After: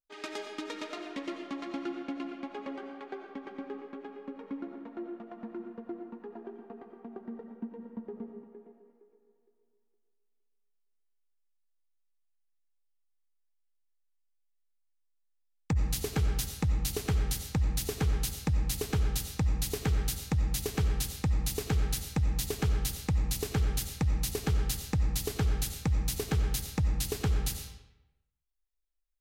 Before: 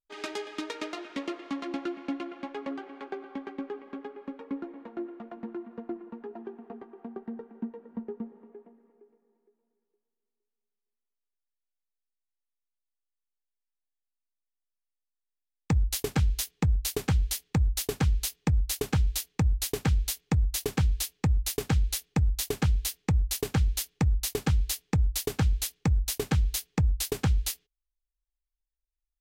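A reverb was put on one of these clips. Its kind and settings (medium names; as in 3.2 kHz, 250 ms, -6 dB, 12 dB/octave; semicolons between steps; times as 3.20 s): algorithmic reverb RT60 0.96 s, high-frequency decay 0.75×, pre-delay 50 ms, DRR 4.5 dB; trim -4 dB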